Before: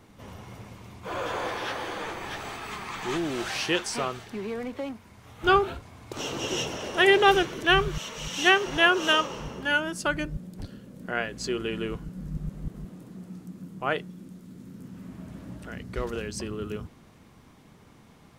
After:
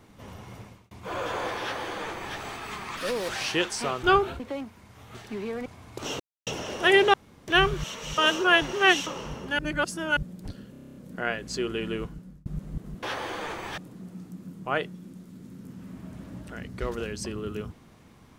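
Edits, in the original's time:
0:00.60–0:00.91: fade out
0:01.61–0:02.36: duplicate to 0:12.93
0:02.97–0:03.43: play speed 145%
0:04.17–0:04.68: swap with 0:05.43–0:05.80
0:06.34–0:06.61: silence
0:07.28–0:07.62: fill with room tone
0:08.32–0:09.21: reverse
0:09.73–0:10.31: reverse
0:10.86: stutter 0.03 s, 9 plays
0:11.93–0:12.36: fade out

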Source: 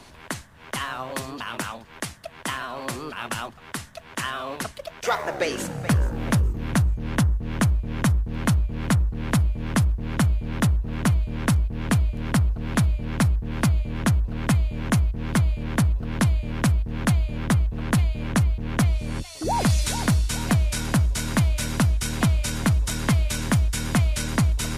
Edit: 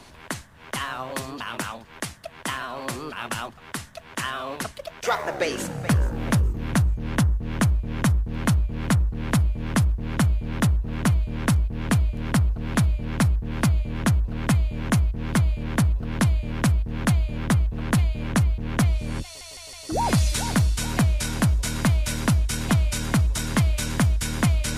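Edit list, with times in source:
0:19.25: stutter 0.16 s, 4 plays

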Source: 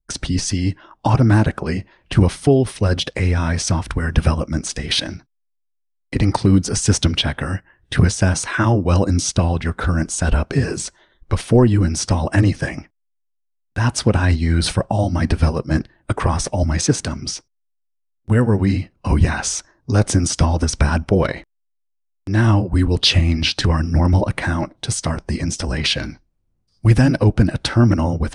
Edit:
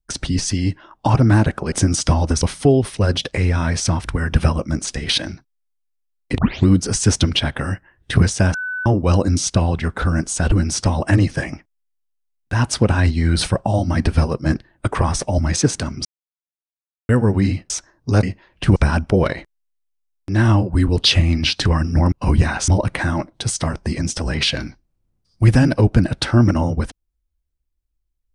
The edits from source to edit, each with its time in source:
0:01.72–0:02.25: swap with 0:20.04–0:20.75
0:06.20: tape start 0.29 s
0:08.36–0:08.68: beep over 1,500 Hz −22.5 dBFS
0:10.34–0:11.77: remove
0:17.30–0:18.34: silence
0:18.95–0:19.51: move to 0:24.11

